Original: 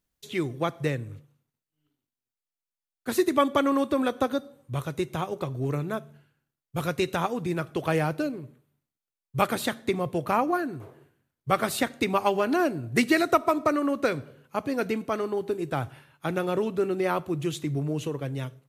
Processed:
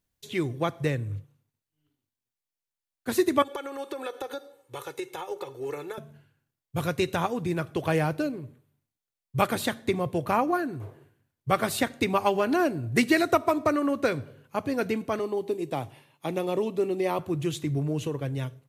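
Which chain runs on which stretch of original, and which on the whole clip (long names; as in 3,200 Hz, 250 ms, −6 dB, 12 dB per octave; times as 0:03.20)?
0:03.42–0:05.98: high-pass filter 420 Hz + downward compressor 10 to 1, threshold −31 dBFS + comb filter 2.3 ms, depth 73%
0:15.19–0:17.19: high-pass filter 190 Hz + parametric band 1,500 Hz −14.5 dB 0.33 octaves
whole clip: parametric band 100 Hz +9.5 dB 0.36 octaves; notch filter 1,300 Hz, Q 17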